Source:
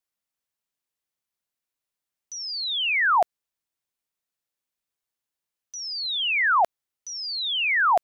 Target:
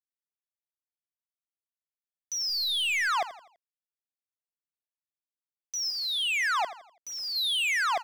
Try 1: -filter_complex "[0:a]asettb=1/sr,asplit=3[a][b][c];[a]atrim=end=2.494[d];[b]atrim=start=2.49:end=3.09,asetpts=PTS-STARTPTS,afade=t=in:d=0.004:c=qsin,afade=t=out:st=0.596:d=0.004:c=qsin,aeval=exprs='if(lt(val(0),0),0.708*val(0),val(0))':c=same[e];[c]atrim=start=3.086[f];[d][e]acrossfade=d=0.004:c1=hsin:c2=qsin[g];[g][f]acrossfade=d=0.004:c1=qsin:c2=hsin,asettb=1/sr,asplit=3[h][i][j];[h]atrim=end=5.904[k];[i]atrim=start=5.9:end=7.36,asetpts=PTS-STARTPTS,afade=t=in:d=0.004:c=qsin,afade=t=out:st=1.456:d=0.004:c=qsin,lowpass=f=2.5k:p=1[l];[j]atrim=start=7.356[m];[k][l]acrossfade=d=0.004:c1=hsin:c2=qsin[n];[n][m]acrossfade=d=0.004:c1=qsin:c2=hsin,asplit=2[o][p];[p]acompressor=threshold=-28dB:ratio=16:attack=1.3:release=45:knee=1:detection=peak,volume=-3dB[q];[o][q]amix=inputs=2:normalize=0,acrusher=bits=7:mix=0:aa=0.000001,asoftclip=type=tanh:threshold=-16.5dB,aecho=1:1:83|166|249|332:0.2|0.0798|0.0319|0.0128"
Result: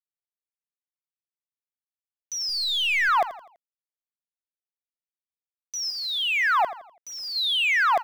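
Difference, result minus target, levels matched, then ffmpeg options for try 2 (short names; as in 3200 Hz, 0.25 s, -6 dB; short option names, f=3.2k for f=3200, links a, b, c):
soft clip: distortion -9 dB
-filter_complex "[0:a]asettb=1/sr,asplit=3[a][b][c];[a]atrim=end=2.494[d];[b]atrim=start=2.49:end=3.09,asetpts=PTS-STARTPTS,afade=t=in:d=0.004:c=qsin,afade=t=out:st=0.596:d=0.004:c=qsin,aeval=exprs='if(lt(val(0),0),0.708*val(0),val(0))':c=same[e];[c]atrim=start=3.086[f];[d][e]acrossfade=d=0.004:c1=hsin:c2=qsin[g];[g][f]acrossfade=d=0.004:c1=qsin:c2=hsin,asettb=1/sr,asplit=3[h][i][j];[h]atrim=end=5.904[k];[i]atrim=start=5.9:end=7.36,asetpts=PTS-STARTPTS,afade=t=in:d=0.004:c=qsin,afade=t=out:st=1.456:d=0.004:c=qsin,lowpass=f=2.5k:p=1[l];[j]atrim=start=7.356[m];[k][l]acrossfade=d=0.004:c1=hsin:c2=qsin[n];[n][m]acrossfade=d=0.004:c1=qsin:c2=hsin,asplit=2[o][p];[p]acompressor=threshold=-28dB:ratio=16:attack=1.3:release=45:knee=1:detection=peak,volume=-3dB[q];[o][q]amix=inputs=2:normalize=0,acrusher=bits=7:mix=0:aa=0.000001,asoftclip=type=tanh:threshold=-25.5dB,aecho=1:1:83|166|249|332:0.2|0.0798|0.0319|0.0128"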